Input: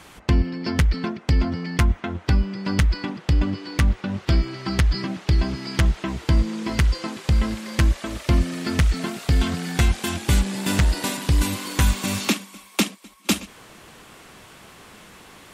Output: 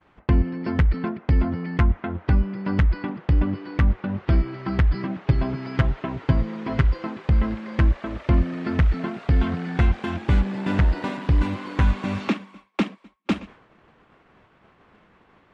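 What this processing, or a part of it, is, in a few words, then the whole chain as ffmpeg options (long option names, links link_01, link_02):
hearing-loss simulation: -filter_complex "[0:a]asettb=1/sr,asplit=3[link_01][link_02][link_03];[link_01]atrim=end=5.264[link_04];[link_02]atrim=start=5.26:end=6.84,asetpts=PTS-STARTPTS,afade=type=in:duration=0.004:curve=qsin,afade=type=out:start_time=1.576:duration=0.004:curve=qsin,aecho=1:1:7.4:0.63,atrim=end_sample=69678[link_05];[link_03]atrim=start=6.836[link_06];[link_04][link_05]acrossfade=duration=0.004:curve1=hsin:curve2=qsin[link_07];[link_07][link_06]acrossfade=duration=0.004:curve1=qsin:curve2=hsin,lowpass=1900,agate=range=-33dB:threshold=-40dB:ratio=3:detection=peak"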